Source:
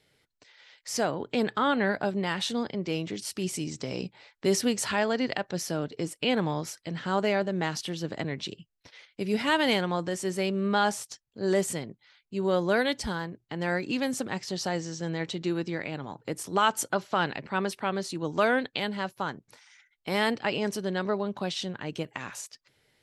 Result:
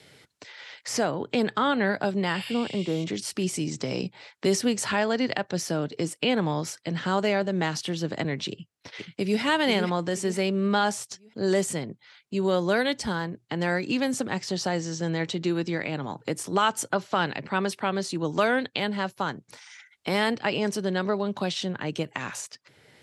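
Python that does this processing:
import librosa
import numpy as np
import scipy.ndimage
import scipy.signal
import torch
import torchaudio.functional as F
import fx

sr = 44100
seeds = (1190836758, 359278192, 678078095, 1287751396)

y = fx.spec_repair(x, sr, seeds[0], start_s=2.36, length_s=0.65, low_hz=2100.0, high_hz=10000.0, source='both')
y = fx.echo_throw(y, sr, start_s=8.5, length_s=0.91, ms=480, feedback_pct=35, wet_db=-6.5)
y = scipy.signal.sosfilt(scipy.signal.cheby1(2, 1.0, [100.0, 9700.0], 'bandpass', fs=sr, output='sos'), y)
y = fx.band_squash(y, sr, depth_pct=40)
y = F.gain(torch.from_numpy(y), 3.0).numpy()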